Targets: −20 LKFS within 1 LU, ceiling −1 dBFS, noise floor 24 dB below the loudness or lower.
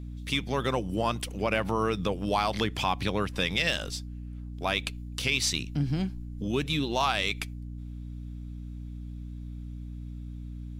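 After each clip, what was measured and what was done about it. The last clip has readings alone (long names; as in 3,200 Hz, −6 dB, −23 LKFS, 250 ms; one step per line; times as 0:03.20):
mains hum 60 Hz; hum harmonics up to 300 Hz; level of the hum −36 dBFS; integrated loudness −29.0 LKFS; sample peak −11.5 dBFS; target loudness −20.0 LKFS
→ mains-hum notches 60/120/180/240/300 Hz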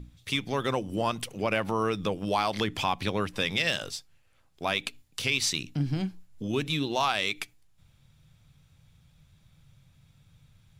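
mains hum none found; integrated loudness −29.5 LKFS; sample peak −11.5 dBFS; target loudness −20.0 LKFS
→ level +9.5 dB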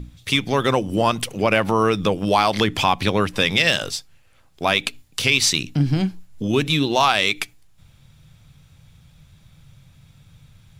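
integrated loudness −20.0 LKFS; sample peak −2.0 dBFS; background noise floor −54 dBFS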